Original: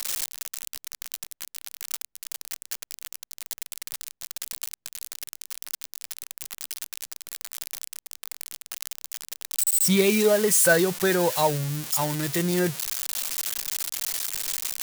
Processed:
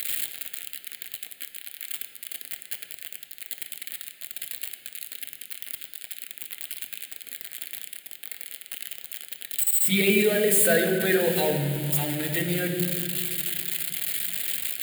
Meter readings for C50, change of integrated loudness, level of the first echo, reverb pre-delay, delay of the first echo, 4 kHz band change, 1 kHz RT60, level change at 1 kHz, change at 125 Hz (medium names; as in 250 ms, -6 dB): 6.5 dB, -0.5 dB, no echo, 3 ms, no echo, -0.5 dB, 2.1 s, -7.0 dB, 0.0 dB